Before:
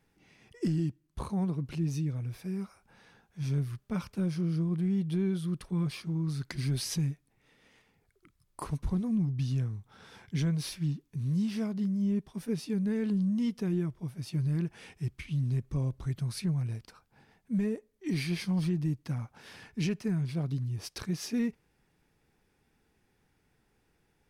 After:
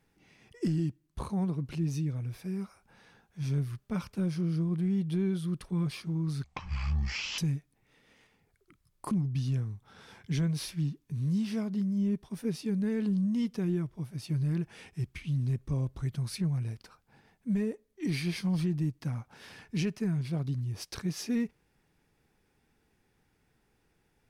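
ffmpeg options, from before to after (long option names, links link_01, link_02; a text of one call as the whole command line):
ffmpeg -i in.wav -filter_complex "[0:a]asplit=4[link_01][link_02][link_03][link_04];[link_01]atrim=end=6.444[link_05];[link_02]atrim=start=6.44:end=6.93,asetpts=PTS-STARTPTS,asetrate=22932,aresample=44100[link_06];[link_03]atrim=start=6.926:end=8.662[link_07];[link_04]atrim=start=9.148[link_08];[link_05][link_06]acrossfade=duration=0.004:curve1=hsin:curve2=hsin[link_09];[link_09][link_07]acrossfade=duration=0.004:curve1=hsin:curve2=hsin[link_10];[link_10][link_08]acrossfade=duration=0.004:curve1=hsin:curve2=hsin" out.wav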